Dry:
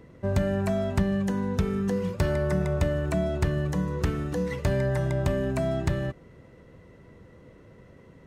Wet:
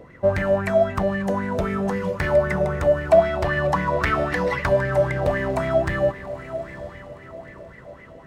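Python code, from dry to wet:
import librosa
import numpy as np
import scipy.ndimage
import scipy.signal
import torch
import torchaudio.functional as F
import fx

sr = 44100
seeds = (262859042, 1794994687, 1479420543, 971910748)

y = fx.spec_box(x, sr, start_s=3.11, length_s=1.55, low_hz=540.0, high_hz=5700.0, gain_db=7)
y = fx.rider(y, sr, range_db=10, speed_s=0.5)
y = np.clip(y, -10.0 ** (-20.5 / 20.0), 10.0 ** (-20.5 / 20.0))
y = fx.echo_diffused(y, sr, ms=922, feedback_pct=41, wet_db=-13)
y = fx.bell_lfo(y, sr, hz=3.8, low_hz=580.0, high_hz=2100.0, db=17)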